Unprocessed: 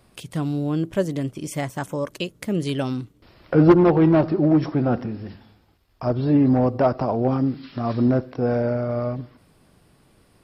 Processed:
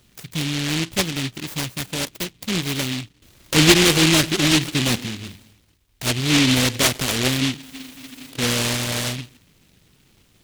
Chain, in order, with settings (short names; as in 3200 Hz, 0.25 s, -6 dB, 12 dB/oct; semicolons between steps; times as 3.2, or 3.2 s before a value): spectral freeze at 7.67, 0.64 s; noise-modulated delay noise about 2900 Hz, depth 0.4 ms